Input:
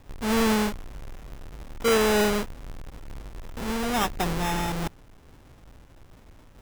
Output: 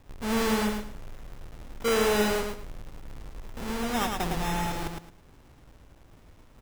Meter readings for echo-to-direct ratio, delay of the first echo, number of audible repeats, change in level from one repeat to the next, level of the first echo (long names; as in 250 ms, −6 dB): −4.0 dB, 109 ms, 3, −12.5 dB, −4.5 dB